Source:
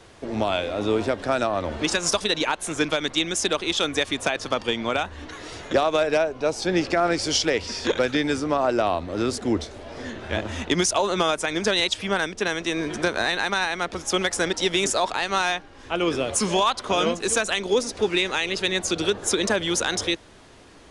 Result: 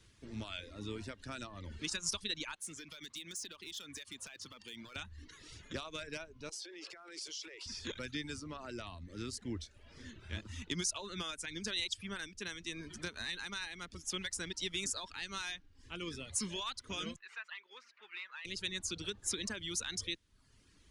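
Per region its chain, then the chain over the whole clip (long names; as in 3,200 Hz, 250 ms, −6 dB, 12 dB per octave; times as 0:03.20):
0:02.55–0:04.96: high-pass filter 230 Hz 6 dB per octave + downward compressor 8 to 1, threshold −25 dBFS + gain into a clipping stage and back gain 25.5 dB
0:06.49–0:07.66: Butterworth high-pass 330 Hz 72 dB per octave + downward compressor 12 to 1, threshold −26 dBFS + transient designer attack −6 dB, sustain +7 dB
0:17.16–0:18.45: variable-slope delta modulation 64 kbit/s + flat-topped band-pass 1,500 Hz, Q 0.94
whole clip: notch filter 750 Hz, Q 12; reverb reduction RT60 0.77 s; guitar amp tone stack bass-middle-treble 6-0-2; level +3.5 dB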